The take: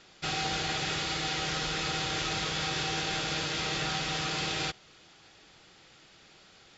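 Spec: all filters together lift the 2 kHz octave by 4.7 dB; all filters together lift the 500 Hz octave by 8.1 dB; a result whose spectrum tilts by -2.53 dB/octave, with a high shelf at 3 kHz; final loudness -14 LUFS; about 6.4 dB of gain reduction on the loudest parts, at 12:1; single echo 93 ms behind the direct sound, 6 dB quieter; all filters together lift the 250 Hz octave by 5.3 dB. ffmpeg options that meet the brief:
-af "equalizer=f=250:t=o:g=5,equalizer=f=500:t=o:g=8,equalizer=f=2000:t=o:g=3.5,highshelf=f=3000:g=5,acompressor=threshold=0.0316:ratio=12,aecho=1:1:93:0.501,volume=7.5"

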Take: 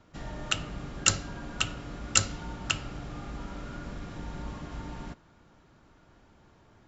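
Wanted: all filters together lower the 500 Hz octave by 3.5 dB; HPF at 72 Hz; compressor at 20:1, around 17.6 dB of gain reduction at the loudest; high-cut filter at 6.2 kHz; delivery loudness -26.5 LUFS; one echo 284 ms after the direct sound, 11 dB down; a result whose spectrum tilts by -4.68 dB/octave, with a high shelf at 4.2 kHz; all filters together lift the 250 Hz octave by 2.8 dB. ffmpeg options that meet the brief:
-af "highpass=72,lowpass=6200,equalizer=f=250:t=o:g=5.5,equalizer=f=500:t=o:g=-6.5,highshelf=f=4200:g=-4.5,acompressor=threshold=0.00708:ratio=20,aecho=1:1:284:0.282,volume=11.9"

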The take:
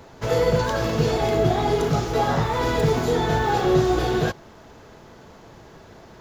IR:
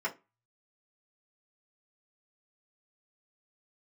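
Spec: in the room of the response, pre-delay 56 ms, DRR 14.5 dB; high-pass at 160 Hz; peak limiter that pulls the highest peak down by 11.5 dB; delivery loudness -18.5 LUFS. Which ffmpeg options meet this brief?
-filter_complex "[0:a]highpass=160,alimiter=limit=0.1:level=0:latency=1,asplit=2[s0][s1];[1:a]atrim=start_sample=2205,adelay=56[s2];[s1][s2]afir=irnorm=-1:irlink=0,volume=0.0944[s3];[s0][s3]amix=inputs=2:normalize=0,volume=2.99"

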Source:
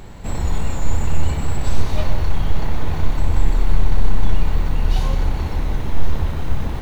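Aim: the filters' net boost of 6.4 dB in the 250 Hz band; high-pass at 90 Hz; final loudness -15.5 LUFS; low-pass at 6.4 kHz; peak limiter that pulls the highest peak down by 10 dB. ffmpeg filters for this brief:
-af "highpass=90,lowpass=6400,equalizer=f=250:t=o:g=9,volume=5.01,alimiter=limit=0.473:level=0:latency=1"

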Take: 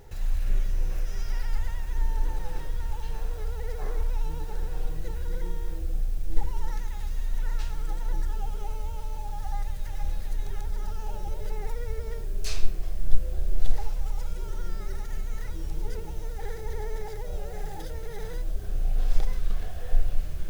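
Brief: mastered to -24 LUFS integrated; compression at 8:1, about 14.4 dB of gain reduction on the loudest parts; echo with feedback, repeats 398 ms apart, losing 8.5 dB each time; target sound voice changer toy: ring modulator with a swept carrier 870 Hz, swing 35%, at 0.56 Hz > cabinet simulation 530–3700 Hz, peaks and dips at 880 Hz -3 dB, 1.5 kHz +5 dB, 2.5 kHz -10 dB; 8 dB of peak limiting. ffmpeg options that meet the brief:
-af "acompressor=threshold=0.0708:ratio=8,alimiter=level_in=1.26:limit=0.0631:level=0:latency=1,volume=0.794,aecho=1:1:398|796|1194|1592:0.376|0.143|0.0543|0.0206,aeval=exprs='val(0)*sin(2*PI*870*n/s+870*0.35/0.56*sin(2*PI*0.56*n/s))':c=same,highpass=530,equalizer=f=880:t=q:w=4:g=-3,equalizer=f=1500:t=q:w=4:g=5,equalizer=f=2500:t=q:w=4:g=-10,lowpass=f=3700:w=0.5412,lowpass=f=3700:w=1.3066,volume=3.55"

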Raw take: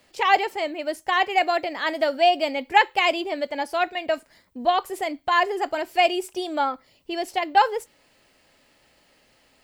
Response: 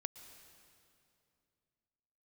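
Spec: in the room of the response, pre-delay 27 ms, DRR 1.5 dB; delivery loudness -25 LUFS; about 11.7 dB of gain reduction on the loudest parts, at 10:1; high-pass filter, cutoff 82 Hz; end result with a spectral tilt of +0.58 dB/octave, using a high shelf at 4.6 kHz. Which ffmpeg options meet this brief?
-filter_complex "[0:a]highpass=82,highshelf=f=4600:g=-8,acompressor=threshold=0.0631:ratio=10,asplit=2[s0][s1];[1:a]atrim=start_sample=2205,adelay=27[s2];[s1][s2]afir=irnorm=-1:irlink=0,volume=1.12[s3];[s0][s3]amix=inputs=2:normalize=0,volume=1.41"

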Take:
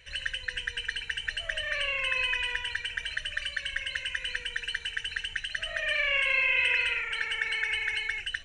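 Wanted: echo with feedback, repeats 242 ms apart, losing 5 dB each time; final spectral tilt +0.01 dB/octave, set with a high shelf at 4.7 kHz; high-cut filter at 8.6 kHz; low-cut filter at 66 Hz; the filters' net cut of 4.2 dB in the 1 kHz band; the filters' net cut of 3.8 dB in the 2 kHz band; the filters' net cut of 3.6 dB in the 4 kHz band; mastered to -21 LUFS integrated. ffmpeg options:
-af "highpass=66,lowpass=8600,equalizer=f=1000:t=o:g=-4,equalizer=f=2000:t=o:g=-3,equalizer=f=4000:t=o:g=-5.5,highshelf=f=4700:g=4.5,aecho=1:1:242|484|726|968|1210|1452|1694:0.562|0.315|0.176|0.0988|0.0553|0.031|0.0173,volume=3.16"

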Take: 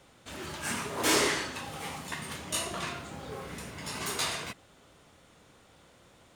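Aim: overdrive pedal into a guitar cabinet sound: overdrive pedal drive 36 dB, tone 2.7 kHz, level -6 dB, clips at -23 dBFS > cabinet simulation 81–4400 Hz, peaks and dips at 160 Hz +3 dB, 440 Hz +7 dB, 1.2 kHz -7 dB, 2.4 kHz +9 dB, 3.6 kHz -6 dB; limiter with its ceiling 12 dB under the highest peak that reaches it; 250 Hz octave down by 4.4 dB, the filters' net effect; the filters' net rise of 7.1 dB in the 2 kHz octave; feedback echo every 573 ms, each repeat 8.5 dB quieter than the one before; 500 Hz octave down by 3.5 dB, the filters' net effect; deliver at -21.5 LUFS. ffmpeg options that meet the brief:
-filter_complex "[0:a]equalizer=f=250:t=o:g=-4.5,equalizer=f=500:t=o:g=-8.5,equalizer=f=2000:t=o:g=5,alimiter=level_in=1.12:limit=0.0631:level=0:latency=1,volume=0.891,aecho=1:1:573|1146|1719|2292:0.376|0.143|0.0543|0.0206,asplit=2[s0][s1];[s1]highpass=f=720:p=1,volume=63.1,asoftclip=type=tanh:threshold=0.0708[s2];[s0][s2]amix=inputs=2:normalize=0,lowpass=f=2700:p=1,volume=0.501,highpass=81,equalizer=f=160:t=q:w=4:g=3,equalizer=f=440:t=q:w=4:g=7,equalizer=f=1200:t=q:w=4:g=-7,equalizer=f=2400:t=q:w=4:g=9,equalizer=f=3600:t=q:w=4:g=-6,lowpass=f=4400:w=0.5412,lowpass=f=4400:w=1.3066,volume=2.11"

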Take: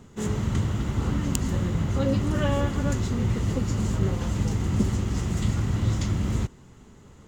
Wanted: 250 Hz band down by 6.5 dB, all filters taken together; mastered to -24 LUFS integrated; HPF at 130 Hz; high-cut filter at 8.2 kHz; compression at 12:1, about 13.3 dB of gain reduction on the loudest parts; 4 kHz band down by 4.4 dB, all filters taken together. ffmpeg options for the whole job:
-af "highpass=130,lowpass=8200,equalizer=f=250:t=o:g=-8,equalizer=f=4000:t=o:g=-6,acompressor=threshold=0.0126:ratio=12,volume=8.41"

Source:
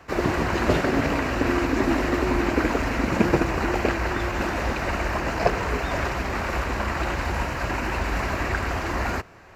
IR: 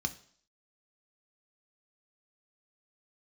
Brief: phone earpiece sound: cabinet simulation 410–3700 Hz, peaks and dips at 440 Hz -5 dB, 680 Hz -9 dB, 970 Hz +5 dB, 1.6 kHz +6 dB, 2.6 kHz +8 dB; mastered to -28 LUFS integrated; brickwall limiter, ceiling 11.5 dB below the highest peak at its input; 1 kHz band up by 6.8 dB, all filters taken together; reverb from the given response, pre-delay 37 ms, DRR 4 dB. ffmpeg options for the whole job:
-filter_complex "[0:a]equalizer=f=1000:t=o:g=6,alimiter=limit=0.211:level=0:latency=1,asplit=2[s0][s1];[1:a]atrim=start_sample=2205,adelay=37[s2];[s1][s2]afir=irnorm=-1:irlink=0,volume=0.473[s3];[s0][s3]amix=inputs=2:normalize=0,highpass=410,equalizer=f=440:t=q:w=4:g=-5,equalizer=f=680:t=q:w=4:g=-9,equalizer=f=970:t=q:w=4:g=5,equalizer=f=1600:t=q:w=4:g=6,equalizer=f=2600:t=q:w=4:g=8,lowpass=f=3700:w=0.5412,lowpass=f=3700:w=1.3066,volume=0.447"

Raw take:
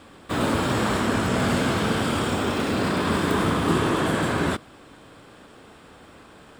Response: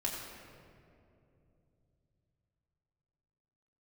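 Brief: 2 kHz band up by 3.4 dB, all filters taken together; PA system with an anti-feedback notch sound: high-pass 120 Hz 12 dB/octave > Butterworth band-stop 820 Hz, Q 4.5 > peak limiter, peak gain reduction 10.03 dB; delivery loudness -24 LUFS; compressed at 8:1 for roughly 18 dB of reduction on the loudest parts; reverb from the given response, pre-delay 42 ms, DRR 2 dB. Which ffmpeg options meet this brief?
-filter_complex "[0:a]equalizer=f=2000:t=o:g=4.5,acompressor=threshold=0.0141:ratio=8,asplit=2[s0][s1];[1:a]atrim=start_sample=2205,adelay=42[s2];[s1][s2]afir=irnorm=-1:irlink=0,volume=0.531[s3];[s0][s3]amix=inputs=2:normalize=0,highpass=120,asuperstop=centerf=820:order=8:qfactor=4.5,volume=10,alimiter=limit=0.168:level=0:latency=1"

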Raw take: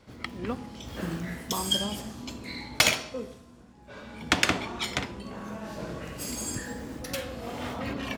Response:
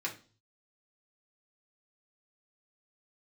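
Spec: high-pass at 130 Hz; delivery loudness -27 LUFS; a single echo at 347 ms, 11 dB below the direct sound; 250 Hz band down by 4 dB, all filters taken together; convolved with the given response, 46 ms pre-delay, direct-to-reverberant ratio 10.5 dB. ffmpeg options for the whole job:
-filter_complex "[0:a]highpass=130,equalizer=f=250:t=o:g=-4.5,aecho=1:1:347:0.282,asplit=2[s0][s1];[1:a]atrim=start_sample=2205,adelay=46[s2];[s1][s2]afir=irnorm=-1:irlink=0,volume=0.2[s3];[s0][s3]amix=inputs=2:normalize=0,volume=1.5"

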